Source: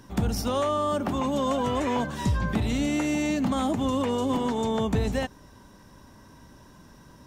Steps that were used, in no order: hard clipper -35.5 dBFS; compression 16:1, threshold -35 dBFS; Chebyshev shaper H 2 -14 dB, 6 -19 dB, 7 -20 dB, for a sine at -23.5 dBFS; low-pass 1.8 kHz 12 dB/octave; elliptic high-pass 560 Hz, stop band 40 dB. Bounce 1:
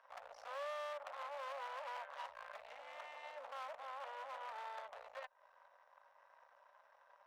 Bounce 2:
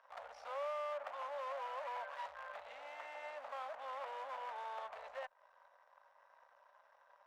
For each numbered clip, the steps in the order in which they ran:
low-pass > compression > hard clipper > Chebyshev shaper > elliptic high-pass; Chebyshev shaper > compression > low-pass > hard clipper > elliptic high-pass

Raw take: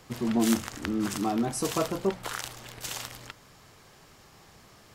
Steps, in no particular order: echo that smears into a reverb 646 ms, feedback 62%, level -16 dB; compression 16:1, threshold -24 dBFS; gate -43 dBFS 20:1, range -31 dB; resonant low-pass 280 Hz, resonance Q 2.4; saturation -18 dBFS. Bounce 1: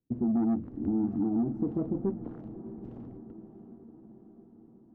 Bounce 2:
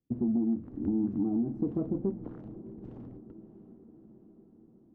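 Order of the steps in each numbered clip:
gate > resonant low-pass > saturation > echo that smears into a reverb > compression; gate > resonant low-pass > compression > saturation > echo that smears into a reverb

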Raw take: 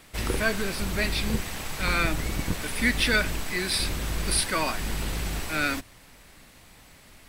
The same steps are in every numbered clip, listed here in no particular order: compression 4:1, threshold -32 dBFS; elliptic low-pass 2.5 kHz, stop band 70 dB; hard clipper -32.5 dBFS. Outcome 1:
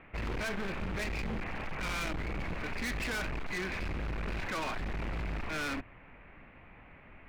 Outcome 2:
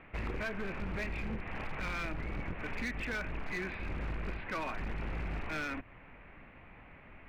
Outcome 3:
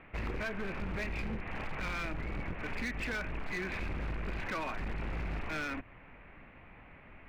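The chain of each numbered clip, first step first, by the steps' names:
elliptic low-pass > hard clipper > compression; compression > elliptic low-pass > hard clipper; elliptic low-pass > compression > hard clipper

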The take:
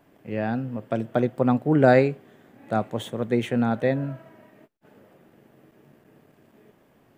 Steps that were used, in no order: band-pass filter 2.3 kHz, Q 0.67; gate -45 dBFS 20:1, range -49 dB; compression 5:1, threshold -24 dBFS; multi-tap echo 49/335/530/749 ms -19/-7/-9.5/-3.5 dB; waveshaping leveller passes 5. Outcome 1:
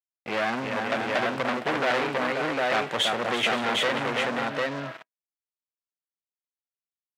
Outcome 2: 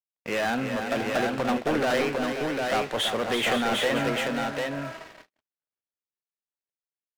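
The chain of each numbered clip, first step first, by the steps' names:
compression > gate > multi-tap echo > waveshaping leveller > band-pass filter; compression > band-pass filter > waveshaping leveller > multi-tap echo > gate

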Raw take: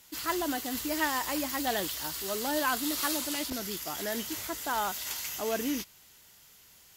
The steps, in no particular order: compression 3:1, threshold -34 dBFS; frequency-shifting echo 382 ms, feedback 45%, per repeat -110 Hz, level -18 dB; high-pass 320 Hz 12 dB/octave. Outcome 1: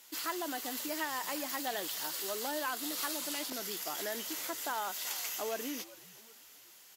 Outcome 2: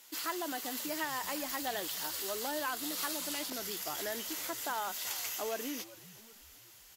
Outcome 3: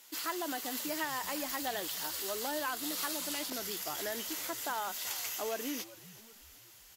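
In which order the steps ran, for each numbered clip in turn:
compression > frequency-shifting echo > high-pass; compression > high-pass > frequency-shifting echo; high-pass > compression > frequency-shifting echo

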